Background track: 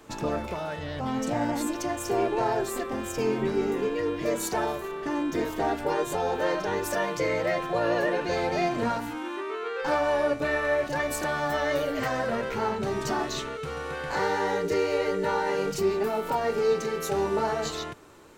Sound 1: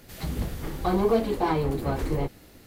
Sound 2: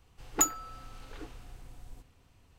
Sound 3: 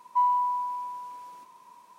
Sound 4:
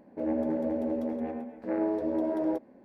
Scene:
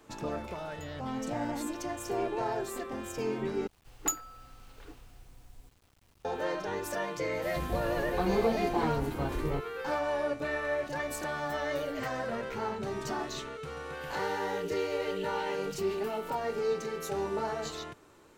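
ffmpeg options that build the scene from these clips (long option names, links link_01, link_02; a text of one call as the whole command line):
ffmpeg -i bed.wav -i cue0.wav -i cue1.wav -filter_complex "[2:a]asplit=2[link_01][link_02];[1:a]asplit=2[link_03][link_04];[0:a]volume=-6.5dB[link_05];[link_01]acompressor=threshold=-48dB:ratio=6:attack=3.2:release=140:knee=1:detection=peak[link_06];[link_02]acrusher=bits=9:mix=0:aa=0.000001[link_07];[link_04]highpass=frequency=2800:width_type=q:width=7.2[link_08];[link_05]asplit=2[link_09][link_10];[link_09]atrim=end=3.674[link_11];[link_07]atrim=end=2.58,asetpts=PTS-STARTPTS,volume=-5dB[link_12];[link_10]atrim=start=6.246[link_13];[link_06]atrim=end=2.58,asetpts=PTS-STARTPTS,volume=-5.5dB,afade=type=in:duration=0.004:curve=hsin,afade=type=out:start_time=2.576:duration=0.004:curve=hsin,adelay=400[link_14];[link_03]atrim=end=2.66,asetpts=PTS-STARTPTS,volume=-6dB,afade=type=in:duration=0.004:curve=hsin,afade=type=out:start_time=2.656:duration=0.004:curve=hsin,adelay=7330[link_15];[link_08]atrim=end=2.66,asetpts=PTS-STARTPTS,volume=-14.5dB,afade=type=in:duration=0.004:curve=hsin,afade=type=out:start_time=2.656:duration=0.004:curve=hsin,adelay=13920[link_16];[link_11][link_12]acrossfade=duration=0.004:curve1=hsin:curve2=hsin[link_17];[link_17][link_13]acrossfade=duration=0.004:curve1=hsin:curve2=hsin[link_18];[link_18][link_14][link_15][link_16]amix=inputs=4:normalize=0" out.wav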